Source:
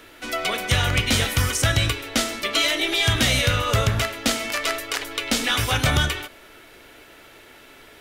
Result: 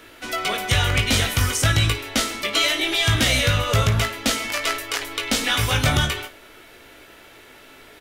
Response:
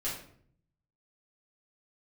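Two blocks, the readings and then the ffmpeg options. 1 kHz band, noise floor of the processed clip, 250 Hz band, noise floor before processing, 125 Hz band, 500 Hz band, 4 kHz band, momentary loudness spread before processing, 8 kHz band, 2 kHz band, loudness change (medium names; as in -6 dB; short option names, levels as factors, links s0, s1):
+1.0 dB, -47 dBFS, +0.5 dB, -48 dBFS, +2.0 dB, 0.0 dB, +1.0 dB, 8 LU, +1.0 dB, +0.5 dB, +1.0 dB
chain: -af "aecho=1:1:19|55:0.473|0.141"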